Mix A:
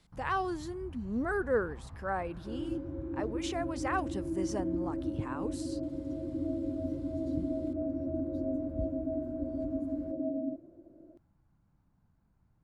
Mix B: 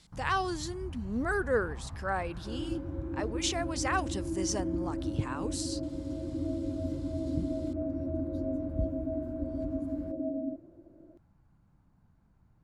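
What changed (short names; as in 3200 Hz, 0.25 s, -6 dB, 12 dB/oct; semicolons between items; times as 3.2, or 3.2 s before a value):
speech: add bell 6000 Hz +12 dB 2.5 oct; first sound +5.0 dB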